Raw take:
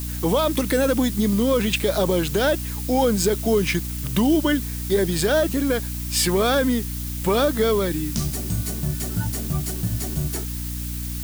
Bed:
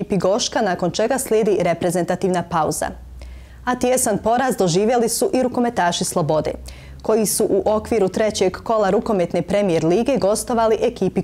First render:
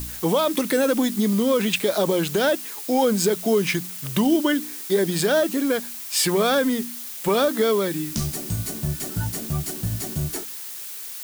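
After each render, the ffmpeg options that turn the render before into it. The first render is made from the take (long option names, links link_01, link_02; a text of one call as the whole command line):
ffmpeg -i in.wav -af "bandreject=frequency=60:width_type=h:width=4,bandreject=frequency=120:width_type=h:width=4,bandreject=frequency=180:width_type=h:width=4,bandreject=frequency=240:width_type=h:width=4,bandreject=frequency=300:width_type=h:width=4" out.wav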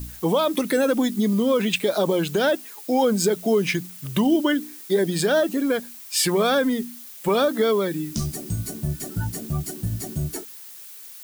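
ffmpeg -i in.wav -af "afftdn=noise_reduction=8:noise_floor=-35" out.wav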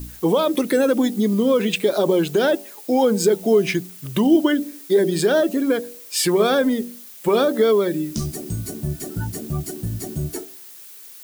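ffmpeg -i in.wav -af "equalizer=frequency=370:width=1.3:gain=5.5,bandreject=frequency=95.77:width_type=h:width=4,bandreject=frequency=191.54:width_type=h:width=4,bandreject=frequency=287.31:width_type=h:width=4,bandreject=frequency=383.08:width_type=h:width=4,bandreject=frequency=478.85:width_type=h:width=4,bandreject=frequency=574.62:width_type=h:width=4,bandreject=frequency=670.39:width_type=h:width=4,bandreject=frequency=766.16:width_type=h:width=4,bandreject=frequency=861.93:width_type=h:width=4" out.wav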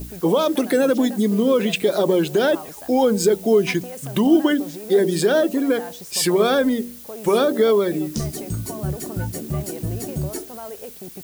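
ffmpeg -i in.wav -i bed.wav -filter_complex "[1:a]volume=-19dB[link_01];[0:a][link_01]amix=inputs=2:normalize=0" out.wav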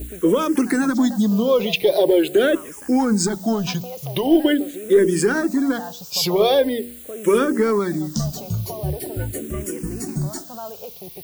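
ffmpeg -i in.wav -filter_complex "[0:a]asplit=2[link_01][link_02];[link_02]aeval=exprs='clip(val(0),-1,0.188)':channel_layout=same,volume=-6dB[link_03];[link_01][link_03]amix=inputs=2:normalize=0,asplit=2[link_04][link_05];[link_05]afreqshift=-0.43[link_06];[link_04][link_06]amix=inputs=2:normalize=1" out.wav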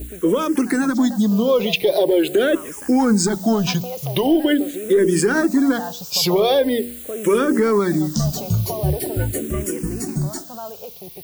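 ffmpeg -i in.wav -af "dynaudnorm=framelen=300:gausssize=13:maxgain=11.5dB,alimiter=limit=-8dB:level=0:latency=1:release=132" out.wav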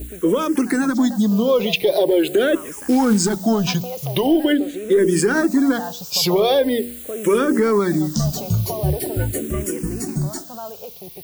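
ffmpeg -i in.wav -filter_complex "[0:a]asettb=1/sr,asplit=3[link_01][link_02][link_03];[link_01]atrim=end=2.714[link_04];[link_02]atrim=start=2.71:end=3.35,asetpts=PTS-STARTPTS,afade=type=in:duration=0.004:curve=qsin,afade=type=out:start_time=0.636:duration=0.004:curve=qsin,acrusher=bits=5:mode=log:mix=0:aa=0.000001[link_05];[link_03]atrim=start=3.346[link_06];[link_04][link_05]acrossfade=duration=0.004:curve1=hsin:curve2=qsin[link_07];[link_07][link_06]acrossfade=duration=0.004:curve1=qsin:curve2=hsin,asettb=1/sr,asplit=3[link_08][link_09][link_10];[link_08]atrim=end=4.524[link_11];[link_09]atrim=start=4.52:end=4.92,asetpts=PTS-STARTPTS,afade=type=in:duration=0.004:curve=qsin,afade=type=out:start_time=0.396:duration=0.004:curve=qsin,acrossover=split=6800[link_12][link_13];[link_13]acompressor=threshold=-43dB:ratio=4:attack=1:release=60[link_14];[link_12][link_14]amix=inputs=2:normalize=0[link_15];[link_10]atrim=start=4.916[link_16];[link_11][link_15]acrossfade=duration=0.004:curve1=hsin:curve2=qsin[link_17];[link_17][link_16]acrossfade=duration=0.004:curve1=qsin:curve2=hsin" out.wav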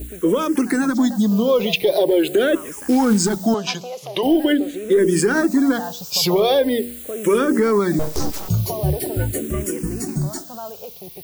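ffmpeg -i in.wav -filter_complex "[0:a]asettb=1/sr,asplit=3[link_01][link_02][link_03];[link_01]atrim=end=3.544[link_04];[link_02]atrim=start=3.54:end=4.23,asetpts=PTS-STARTPTS,afade=type=in:duration=0.004:curve=qsin,afade=type=out:start_time=0.686:duration=0.004:curve=qsin,highpass=340,lowpass=7300[link_05];[link_03]atrim=start=4.226[link_06];[link_04][link_05]acrossfade=duration=0.004:curve1=hsin:curve2=qsin[link_07];[link_07][link_06]acrossfade=duration=0.004:curve1=qsin:curve2=hsin,asettb=1/sr,asplit=3[link_08][link_09][link_10];[link_08]atrim=end=7.994[link_11];[link_09]atrim=start=7.99:end=8.49,asetpts=PTS-STARTPTS,afade=type=in:duration=0.004:curve=qsin,afade=type=out:start_time=0.496:duration=0.004:curve=qsin,aeval=exprs='abs(val(0))':channel_layout=same[link_12];[link_10]atrim=start=8.486[link_13];[link_11][link_12]acrossfade=duration=0.004:curve1=hsin:curve2=qsin[link_14];[link_14][link_13]acrossfade=duration=0.004:curve1=qsin:curve2=hsin" out.wav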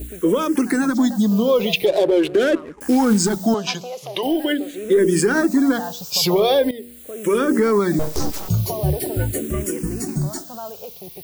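ffmpeg -i in.wav -filter_complex "[0:a]asettb=1/sr,asplit=3[link_01][link_02][link_03];[link_01]atrim=end=1.864[link_04];[link_02]atrim=start=1.86:end=2.81,asetpts=PTS-STARTPTS,afade=type=in:duration=0.004:curve=qsin,afade=type=out:start_time=0.946:duration=0.004:curve=qsin,adynamicsmooth=sensitivity=3.5:basefreq=740[link_05];[link_03]atrim=start=2.806[link_06];[link_04][link_05]acrossfade=duration=0.004:curve1=hsin:curve2=qsin[link_07];[link_07][link_06]acrossfade=duration=0.004:curve1=qsin:curve2=hsin,asettb=1/sr,asplit=3[link_08][link_09][link_10];[link_08]atrim=end=4.164[link_11];[link_09]atrim=start=4.16:end=4.78,asetpts=PTS-STARTPTS,afade=type=in:duration=0.004:curve=qsin,afade=type=out:start_time=0.616:duration=0.004:curve=qsin,lowshelf=frequency=440:gain=-7[link_12];[link_10]atrim=start=4.776[link_13];[link_11][link_12]acrossfade=duration=0.004:curve1=hsin:curve2=qsin[link_14];[link_14][link_13]acrossfade=duration=0.004:curve1=qsin:curve2=hsin,asplit=2[link_15][link_16];[link_15]atrim=end=6.71,asetpts=PTS-STARTPTS,afade=type=out:start_time=6.706:duration=0.004:curve=hsin:silence=0.158489[link_17];[link_16]atrim=start=6.71,asetpts=PTS-STARTPTS,afade=type=in:duration=0.8:silence=0.158489[link_18];[link_17][link_18]concat=n=2:v=0:a=1" out.wav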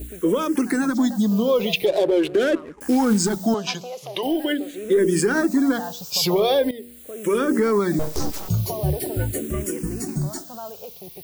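ffmpeg -i in.wav -af "volume=-2.5dB" out.wav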